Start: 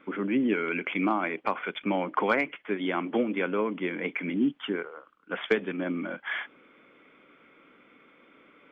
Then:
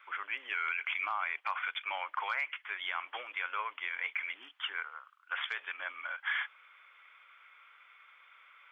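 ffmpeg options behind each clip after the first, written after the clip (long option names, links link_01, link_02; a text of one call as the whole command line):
ffmpeg -i in.wav -af "highpass=frequency=1000:width=0.5412,highpass=frequency=1000:width=1.3066,alimiter=level_in=1dB:limit=-24dB:level=0:latency=1:release=44,volume=-1dB,volume=1.5dB" out.wav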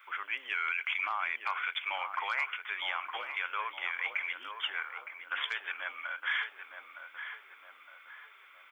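ffmpeg -i in.wav -filter_complex "[0:a]aemphasis=mode=production:type=50kf,asplit=2[link_01][link_02];[link_02]adelay=913,lowpass=frequency=1400:poles=1,volume=-6dB,asplit=2[link_03][link_04];[link_04]adelay=913,lowpass=frequency=1400:poles=1,volume=0.55,asplit=2[link_05][link_06];[link_06]adelay=913,lowpass=frequency=1400:poles=1,volume=0.55,asplit=2[link_07][link_08];[link_08]adelay=913,lowpass=frequency=1400:poles=1,volume=0.55,asplit=2[link_09][link_10];[link_10]adelay=913,lowpass=frequency=1400:poles=1,volume=0.55,asplit=2[link_11][link_12];[link_12]adelay=913,lowpass=frequency=1400:poles=1,volume=0.55,asplit=2[link_13][link_14];[link_14]adelay=913,lowpass=frequency=1400:poles=1,volume=0.55[link_15];[link_01][link_03][link_05][link_07][link_09][link_11][link_13][link_15]amix=inputs=8:normalize=0" out.wav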